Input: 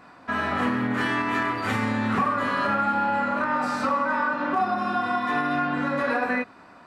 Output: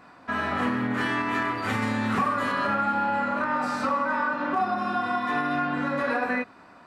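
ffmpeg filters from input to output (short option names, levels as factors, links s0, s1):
-filter_complex "[0:a]asettb=1/sr,asplit=3[s0][s1][s2];[s0]atrim=end=1.824[s3];[s1]atrim=start=1.82:end=2.52,asetpts=PTS-STARTPTS,afade=t=in:d=0.004:c=qsin,afade=t=out:st=0.696:d=0.004:c=qsin,highshelf=f=5100:g=7.5[s4];[s2]atrim=start=2.516[s5];[s3][s4]acrossfade=d=0.004:c1=hsin:c2=qsin[s6];[s6][s5]acrossfade=d=0.004:c1=qsin:c2=hsin,volume=0.841"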